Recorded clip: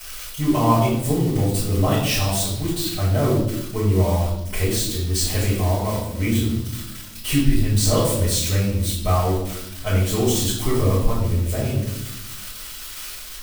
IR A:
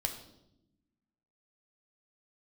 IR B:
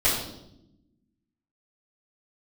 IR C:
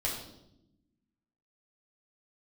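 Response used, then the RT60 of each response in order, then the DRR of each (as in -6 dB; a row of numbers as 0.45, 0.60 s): B; 0.85, 0.85, 0.85 s; 2.0, -16.5, -7.0 dB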